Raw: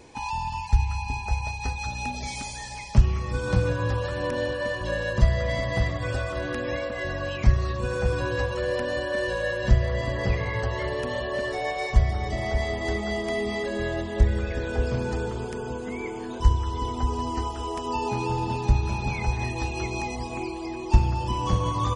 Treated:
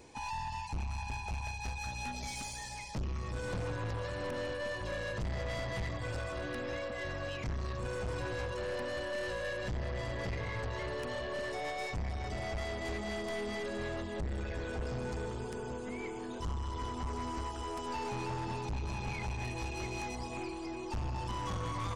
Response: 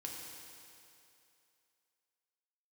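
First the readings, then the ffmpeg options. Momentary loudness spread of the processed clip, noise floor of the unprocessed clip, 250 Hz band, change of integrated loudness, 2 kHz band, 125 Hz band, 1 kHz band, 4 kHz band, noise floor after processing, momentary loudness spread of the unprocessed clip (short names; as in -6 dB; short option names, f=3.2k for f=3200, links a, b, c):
3 LU, -34 dBFS, -10.0 dB, -11.0 dB, -9.5 dB, -13.0 dB, -9.5 dB, -8.0 dB, -42 dBFS, 8 LU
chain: -af "crystalizer=i=0.5:c=0,aeval=exprs='(tanh(25.1*val(0)+0.3)-tanh(0.3))/25.1':c=same,volume=-5.5dB"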